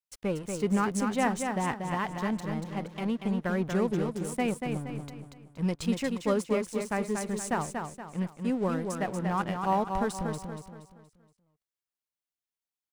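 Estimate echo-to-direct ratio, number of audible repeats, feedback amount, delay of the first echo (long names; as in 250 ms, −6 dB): −4.5 dB, 4, 40%, 236 ms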